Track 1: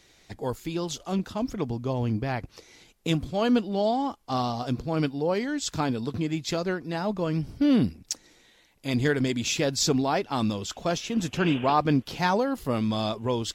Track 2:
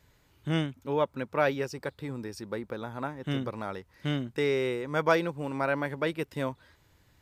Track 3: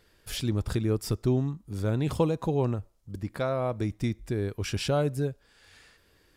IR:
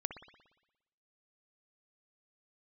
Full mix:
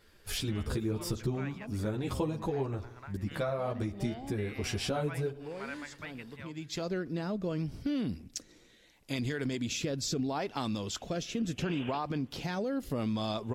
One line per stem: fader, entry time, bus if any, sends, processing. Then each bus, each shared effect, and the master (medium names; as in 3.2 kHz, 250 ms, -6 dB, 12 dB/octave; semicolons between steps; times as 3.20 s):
+0.5 dB, 0.25 s, send -22.5 dB, peak limiter -19 dBFS, peak gain reduction 8.5 dB; rotary cabinet horn 0.75 Hz; auto duck -18 dB, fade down 1.35 s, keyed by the third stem
-6.0 dB, 0.00 s, no send, amplifier tone stack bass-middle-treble 10-0-10; resonant high shelf 3.6 kHz -12 dB, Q 1.5
+1.5 dB, 0.00 s, send -8.5 dB, three-phase chorus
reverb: on, RT60 1.0 s, pre-delay 58 ms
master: compression 3:1, threshold -31 dBFS, peak gain reduction 10 dB